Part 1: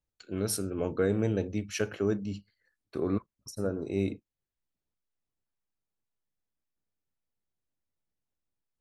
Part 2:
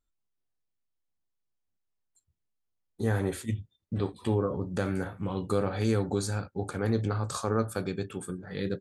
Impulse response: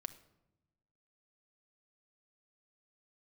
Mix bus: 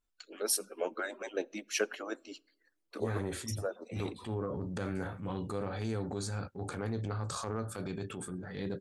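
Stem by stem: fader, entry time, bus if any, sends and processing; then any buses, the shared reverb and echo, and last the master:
+1.0 dB, 0.00 s, send -11.5 dB, median-filter separation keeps percussive; Bessel high-pass 420 Hz, order 8
-1.5 dB, 0.00 s, no send, LPF 9300 Hz 12 dB/oct; compressor 6:1, threshold -29 dBFS, peak gain reduction 8.5 dB; transient shaper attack -9 dB, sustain +4 dB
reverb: on, RT60 0.95 s, pre-delay 5 ms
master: dry

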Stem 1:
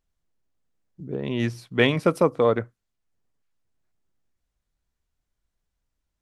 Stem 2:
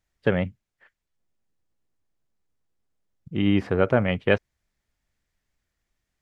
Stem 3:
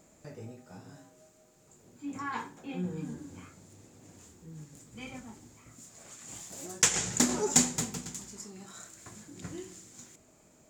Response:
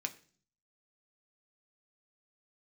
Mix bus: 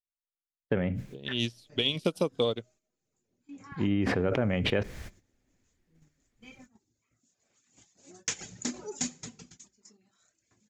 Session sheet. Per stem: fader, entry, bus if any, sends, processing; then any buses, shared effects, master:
+2.0 dB, 0.00 s, no send, resonant high shelf 2400 Hz +10 dB, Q 3; limiter -9 dBFS, peak gain reduction 11.5 dB; upward expander 2.5:1, over -34 dBFS
-2.0 dB, 0.45 s, send -9 dB, gate -54 dBFS, range -25 dB; high shelf 2600 Hz -10 dB; sustainer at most 23 dB/s; auto duck -11 dB, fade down 0.45 s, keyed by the first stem
-9.5 dB, 1.45 s, send -5.5 dB, steep low-pass 6900 Hz 48 dB/oct; reverb removal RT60 0.93 s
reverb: on, RT60 0.45 s, pre-delay 3 ms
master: bell 1000 Hz -5 dB 1.3 oct; gate -54 dBFS, range -11 dB; compressor 6:1, threshold -23 dBFS, peak gain reduction 8 dB

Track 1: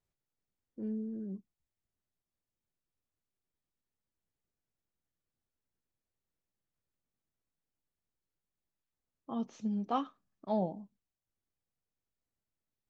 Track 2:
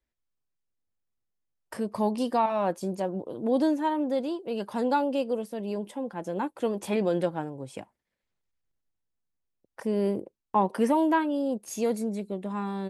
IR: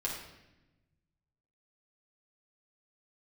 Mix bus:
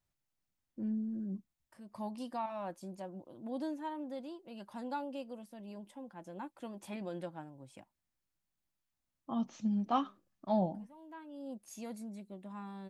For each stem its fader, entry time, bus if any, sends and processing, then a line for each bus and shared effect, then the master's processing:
+2.0 dB, 0.00 s, no send, dry
-13.0 dB, 0.00 s, no send, auto duck -23 dB, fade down 1.50 s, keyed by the first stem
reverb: off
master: bell 440 Hz -14 dB 0.26 oct

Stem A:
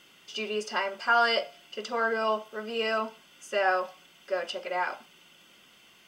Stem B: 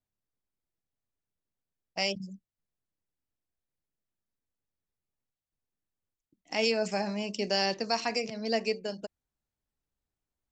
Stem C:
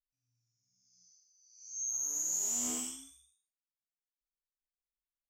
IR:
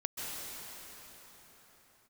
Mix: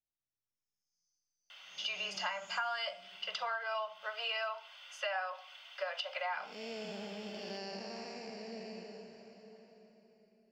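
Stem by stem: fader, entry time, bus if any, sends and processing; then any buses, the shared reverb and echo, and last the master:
+2.0 dB, 1.50 s, no send, steep high-pass 590 Hz 48 dB/oct; resonant high shelf 6000 Hz -13 dB, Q 1.5
-15.0 dB, 0.00 s, send -3.5 dB, time blur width 0.372 s
-13.0 dB, 0.00 s, no send, HPF 480 Hz 6 dB/oct; Chebyshev low-pass 4100 Hz, order 2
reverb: on, pre-delay 0.123 s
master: compressor 6:1, threshold -35 dBFS, peak gain reduction 17 dB

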